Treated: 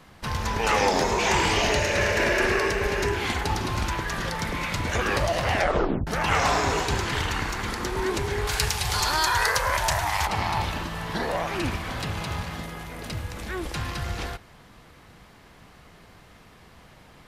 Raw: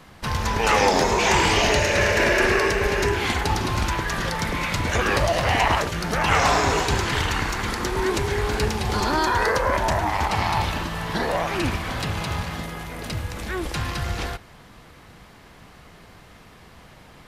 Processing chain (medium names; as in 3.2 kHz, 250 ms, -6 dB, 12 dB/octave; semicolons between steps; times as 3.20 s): 5.52 s: tape stop 0.55 s; 8.47–10.27 s: FFT filter 150 Hz 0 dB, 220 Hz -14 dB, 770 Hz 0 dB, 9.9 kHz +12 dB; trim -3.5 dB